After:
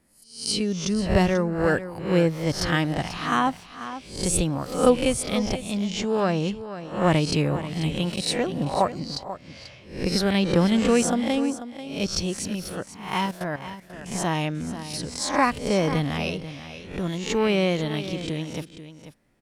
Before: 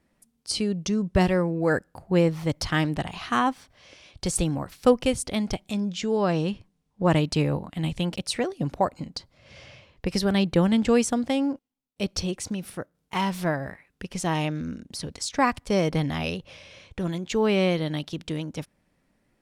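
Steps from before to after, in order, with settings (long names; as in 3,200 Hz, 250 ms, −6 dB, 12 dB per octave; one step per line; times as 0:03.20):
peak hold with a rise ahead of every peak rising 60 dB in 0.47 s
0:13.26–0:14.06: output level in coarse steps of 14 dB
on a send: single-tap delay 489 ms −12.5 dB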